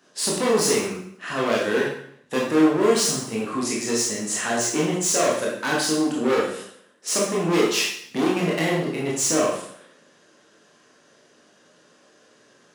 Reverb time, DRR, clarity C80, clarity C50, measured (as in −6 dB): 0.65 s, −4.5 dB, 6.0 dB, 2.5 dB